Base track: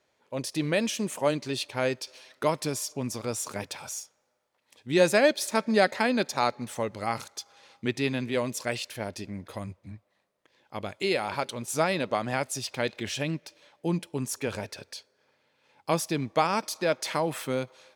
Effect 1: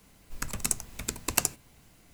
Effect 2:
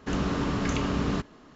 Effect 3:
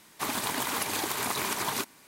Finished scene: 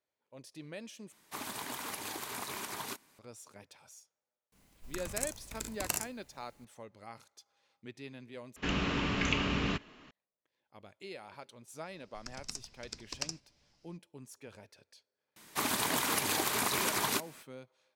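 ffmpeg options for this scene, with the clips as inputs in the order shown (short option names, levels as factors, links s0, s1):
-filter_complex "[3:a]asplit=2[s0][s1];[1:a]asplit=2[s2][s3];[0:a]volume=0.112[s4];[s2]aecho=1:1:40|59:0.501|0.335[s5];[2:a]equalizer=f=2600:w=1.3:g=13[s6];[s3]lowpass=f=5200:t=q:w=5.3[s7];[s1]equalizer=f=860:w=1.5:g=-2[s8];[s4]asplit=3[s9][s10][s11];[s9]atrim=end=1.124[s12];[s0]atrim=end=2.07,asetpts=PTS-STARTPTS,volume=0.316[s13];[s10]atrim=start=3.186:end=8.564[s14];[s6]atrim=end=1.55,asetpts=PTS-STARTPTS,volume=0.501[s15];[s11]atrim=start=10.106[s16];[s5]atrim=end=2.13,asetpts=PTS-STARTPTS,volume=0.355,afade=t=in:d=0.004:c=hsin,afade=t=out:st=2.126:d=0.004:c=hsin,adelay=4520[s17];[s7]atrim=end=2.13,asetpts=PTS-STARTPTS,volume=0.178,afade=t=in:d=0.004:c=hsin,afade=t=out:st=2.126:d=0.004:c=hsin,adelay=11840[s18];[s8]atrim=end=2.07,asetpts=PTS-STARTPTS,volume=0.944,afade=t=in:d=0.004:c=hsin,afade=t=out:st=2.066:d=0.004:c=hsin,adelay=15360[s19];[s12][s13]acrossfade=d=0.004:c1=hsin:c2=hsin[s20];[s20][s14]acrossfade=d=0.004:c1=hsin:c2=hsin[s21];[s21][s15]acrossfade=d=0.004:c1=hsin:c2=hsin[s22];[s22][s16]acrossfade=d=0.004:c1=hsin:c2=hsin[s23];[s23][s17][s18][s19]amix=inputs=4:normalize=0"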